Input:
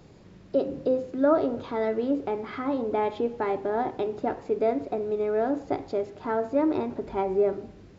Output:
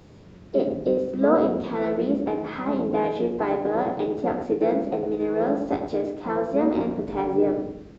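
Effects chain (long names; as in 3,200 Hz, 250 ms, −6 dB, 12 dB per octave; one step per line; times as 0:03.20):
peak hold with a decay on every bin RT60 0.30 s
pitch-shifted copies added −5 semitones −4 dB, +3 semitones −16 dB
feedback echo with a low-pass in the loop 105 ms, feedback 38%, low-pass 970 Hz, level −5 dB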